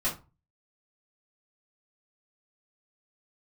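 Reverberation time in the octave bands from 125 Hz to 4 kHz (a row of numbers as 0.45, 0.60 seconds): 0.50, 0.35, 0.30, 0.30, 0.25, 0.20 seconds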